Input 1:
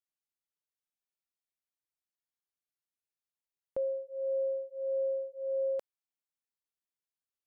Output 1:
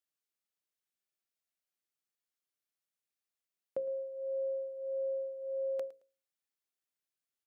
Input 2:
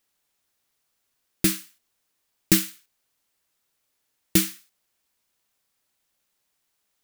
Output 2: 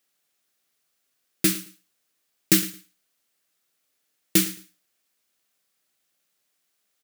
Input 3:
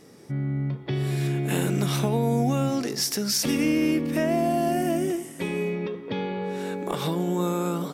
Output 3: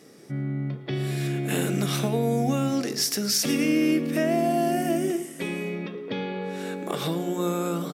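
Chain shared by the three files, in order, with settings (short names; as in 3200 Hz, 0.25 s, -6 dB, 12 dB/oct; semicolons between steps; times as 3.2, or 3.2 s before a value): HPF 140 Hz 12 dB/oct; bell 930 Hz -7.5 dB 0.31 oct; notches 60/120/180/240/300/360/420/480/540 Hz; feedback echo 0.11 s, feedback 21%, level -18.5 dB; gain +1 dB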